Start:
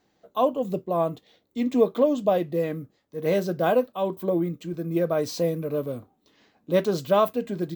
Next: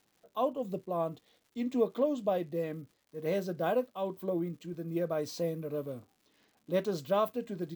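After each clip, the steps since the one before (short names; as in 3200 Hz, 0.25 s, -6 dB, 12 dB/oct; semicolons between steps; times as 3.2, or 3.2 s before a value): crackle 250/s -47 dBFS; gain -8.5 dB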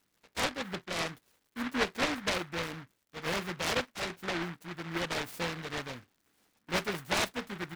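noise-modulated delay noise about 1400 Hz, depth 0.37 ms; gain -2 dB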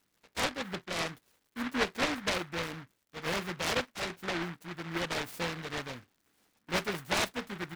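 nothing audible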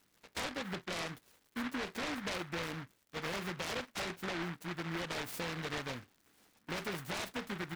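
limiter -30 dBFS, peak gain reduction 11.5 dB; compressor 2.5:1, threshold -41 dBFS, peak gain reduction 5.5 dB; gain +3.5 dB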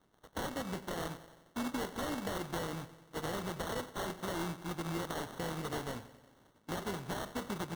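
treble ducked by the level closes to 2900 Hz, closed at -36 dBFS; analogue delay 91 ms, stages 4096, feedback 63%, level -15.5 dB; sample-and-hold 18×; gain +1.5 dB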